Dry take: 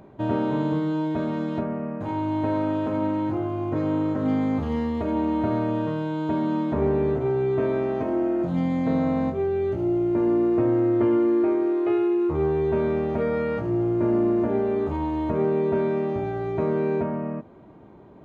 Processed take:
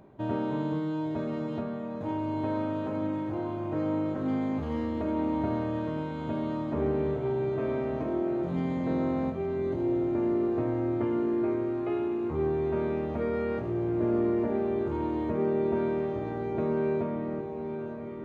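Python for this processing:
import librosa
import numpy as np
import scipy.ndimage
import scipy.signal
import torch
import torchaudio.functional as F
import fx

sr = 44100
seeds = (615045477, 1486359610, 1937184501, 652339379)

y = fx.echo_diffused(x, sr, ms=952, feedback_pct=64, wet_db=-9.0)
y = y * librosa.db_to_amplitude(-6.0)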